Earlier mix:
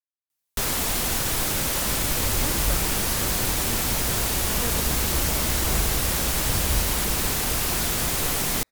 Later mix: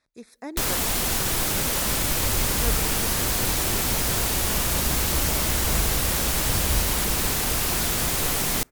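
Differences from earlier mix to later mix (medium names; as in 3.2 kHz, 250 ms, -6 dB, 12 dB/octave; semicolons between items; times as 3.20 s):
speech: entry -2.00 s; reverb: on, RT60 0.95 s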